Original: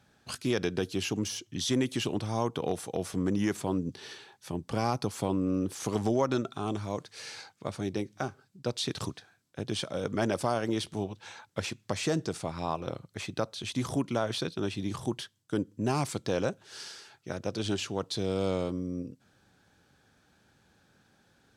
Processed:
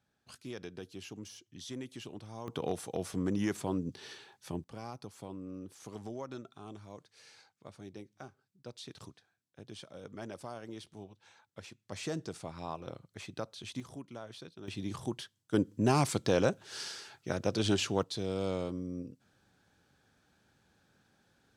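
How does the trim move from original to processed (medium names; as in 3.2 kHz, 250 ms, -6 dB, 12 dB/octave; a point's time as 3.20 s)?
-14.5 dB
from 2.48 s -3.5 dB
from 4.64 s -15 dB
from 11.92 s -8 dB
from 13.80 s -16 dB
from 14.68 s -4.5 dB
from 15.54 s +2 dB
from 18.03 s -4.5 dB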